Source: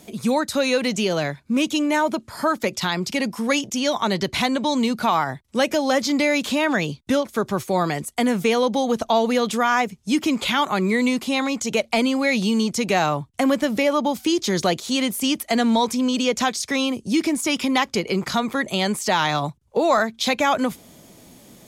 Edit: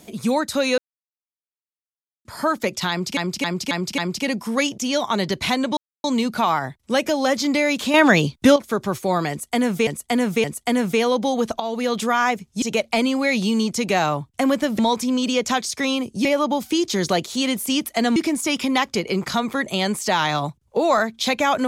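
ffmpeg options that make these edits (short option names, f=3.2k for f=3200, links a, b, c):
-filter_complex "[0:a]asplit=17[a][b][c][d][e][f][g][h][i][j][k][l][m][n][o][p][q];[a]atrim=end=0.78,asetpts=PTS-STARTPTS,afade=t=out:st=0.776:d=0.004:c=hsin[r];[b]atrim=start=0.78:end=2.25,asetpts=PTS-STARTPTS,volume=0[s];[c]atrim=start=2.25:end=3.172,asetpts=PTS-STARTPTS,afade=t=in:d=0.004:c=hsin[t];[d]atrim=start=2.898:end=3.172[u];[e]atrim=start=2.898:end=3.172[v];[f]atrim=start=2.898:end=3.172[w];[g]atrim=start=2.898:end=4.69,asetpts=PTS-STARTPTS,afade=t=out:st=1.788:d=0.004:c=hsin,apad=pad_dur=0.27[x];[h]atrim=start=4.69:end=6.592,asetpts=PTS-STARTPTS,afade=t=in:d=0.004:c=hsin[y];[i]atrim=start=6.588:end=7.212,asetpts=PTS-STARTPTS,volume=7dB[z];[j]atrim=start=7.208:end=8.522[aa];[k]atrim=start=7.948:end=8.522[ab];[l]atrim=start=7.948:end=9.11,asetpts=PTS-STARTPTS,afade=t=out:st=1.158:d=0.004:c=hsin:silence=0.251189[ac];[m]atrim=start=9.11:end=10.132,asetpts=PTS-STARTPTS,afade=t=in:d=0.38:silence=0.251189[ad];[n]atrim=start=11.618:end=13.792[ae];[o]atrim=start=15.698:end=17.162[af];[p]atrim=start=13.788:end=15.702[ag];[q]atrim=start=17.158[ah];[r][s][t]concat=n=3:v=0:a=1[ai];[ai][u]acrossfade=d=0.004:c1=hsin:c2=hsin[aj];[aj][v]acrossfade=d=0.004:c1=hsin:c2=hsin[ak];[ak][w]acrossfade=d=0.004:c1=hsin:c2=hsin[al];[x][y]concat=n=2:v=0:a=1[am];[al][am]acrossfade=d=0.004:c1=hsin:c2=hsin[an];[an][z]acrossfade=d=0.004:c1=hsin:c2=hsin[ao];[ao][aa]acrossfade=d=0.004:c1=hsin:c2=hsin[ap];[ap][ab]acrossfade=d=0.004:c1=hsin:c2=hsin[aq];[ac][ad]concat=n=2:v=0:a=1[ar];[aq][ar]acrossfade=d=0.004:c1=hsin:c2=hsin[as];[as][ae]acrossfade=d=0.004:c1=hsin:c2=hsin[at];[at][af]acrossfade=d=0.004:c1=hsin:c2=hsin[au];[au][ag]acrossfade=d=0.004:c1=hsin:c2=hsin[av];[av][ah]acrossfade=d=0.004:c1=hsin:c2=hsin"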